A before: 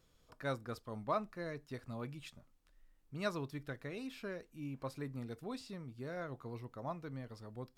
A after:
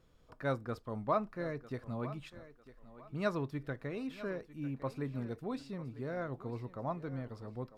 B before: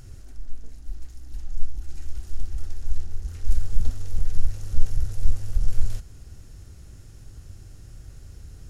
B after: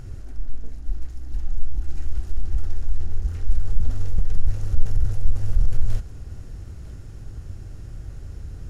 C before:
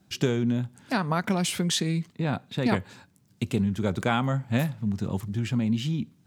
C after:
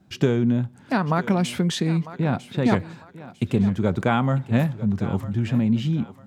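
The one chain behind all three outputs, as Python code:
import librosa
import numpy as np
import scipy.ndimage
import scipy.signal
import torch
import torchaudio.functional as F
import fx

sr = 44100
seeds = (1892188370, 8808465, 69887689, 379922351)

p1 = fx.high_shelf(x, sr, hz=3000.0, db=-11.5)
p2 = fx.over_compress(p1, sr, threshold_db=-19.0, ratio=-0.5)
p3 = p1 + (p2 * librosa.db_to_amplitude(-2.5))
y = fx.echo_thinned(p3, sr, ms=950, feedback_pct=32, hz=220.0, wet_db=-15.0)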